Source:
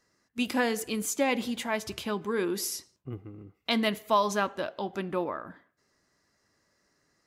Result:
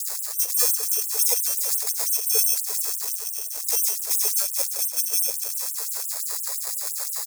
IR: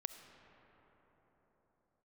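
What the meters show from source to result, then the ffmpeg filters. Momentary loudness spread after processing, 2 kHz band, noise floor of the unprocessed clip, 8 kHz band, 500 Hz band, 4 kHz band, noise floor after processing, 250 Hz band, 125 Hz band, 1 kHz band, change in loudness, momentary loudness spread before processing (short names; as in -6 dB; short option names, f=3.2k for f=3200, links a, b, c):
7 LU, -7.5 dB, -73 dBFS, +17.5 dB, -9.5 dB, +6.0 dB, -32 dBFS, under -35 dB, under -40 dB, -12.0 dB, +8.5 dB, 15 LU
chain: -filter_complex "[0:a]aeval=exprs='val(0)+0.5*0.02*sgn(val(0))':c=same,equalizer=f=3.4k:t=o:w=0.63:g=11.5,aecho=1:1:430|860|1290|1720:0.251|0.0879|0.0308|0.0108,asplit=2[a][b];[1:a]atrim=start_sample=2205[c];[b][c]afir=irnorm=-1:irlink=0,volume=2.5dB[d];[a][d]amix=inputs=2:normalize=0,deesser=0.45,asuperstop=centerf=990:order=8:qfactor=0.93,lowshelf=f=520:t=q:w=1.5:g=6,asplit=2[e][f];[f]acompressor=threshold=-29dB:ratio=6,volume=2.5dB[g];[e][g]amix=inputs=2:normalize=0,acrusher=samples=15:mix=1:aa=0.000001,aexciter=amount=14.2:drive=3.6:freq=4.8k,afftfilt=real='re*gte(b*sr/1024,390*pow(7800/390,0.5+0.5*sin(2*PI*5.8*pts/sr)))':imag='im*gte(b*sr/1024,390*pow(7800/390,0.5+0.5*sin(2*PI*5.8*pts/sr)))':win_size=1024:overlap=0.75,volume=-13.5dB"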